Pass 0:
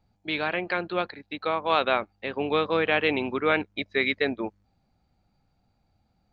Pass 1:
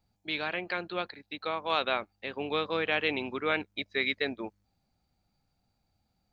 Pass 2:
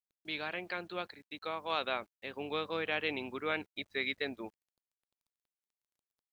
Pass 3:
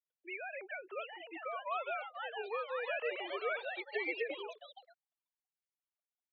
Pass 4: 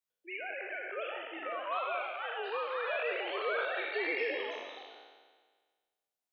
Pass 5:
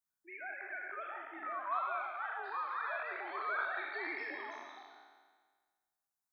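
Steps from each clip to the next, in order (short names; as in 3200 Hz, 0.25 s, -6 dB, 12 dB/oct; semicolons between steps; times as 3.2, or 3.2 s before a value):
high shelf 3600 Hz +10.5 dB; gain -7 dB
bit-crush 11-bit; gain -5.5 dB
sine-wave speech; echoes that change speed 0.756 s, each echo +3 st, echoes 3, each echo -6 dB; gain -3 dB
spectral trails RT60 1.54 s
fixed phaser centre 1200 Hz, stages 4; gain +1 dB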